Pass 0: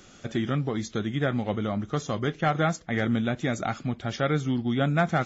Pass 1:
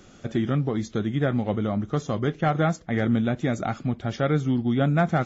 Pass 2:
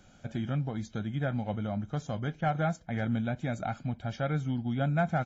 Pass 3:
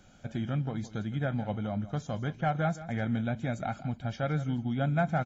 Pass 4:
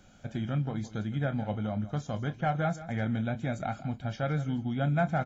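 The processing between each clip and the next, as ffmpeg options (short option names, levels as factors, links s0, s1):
-af "tiltshelf=f=1100:g=3.5"
-af "aecho=1:1:1.3:0.59,volume=0.376"
-af "aecho=1:1:165:0.178"
-filter_complex "[0:a]asplit=2[s0][s1];[s1]adelay=28,volume=0.224[s2];[s0][s2]amix=inputs=2:normalize=0"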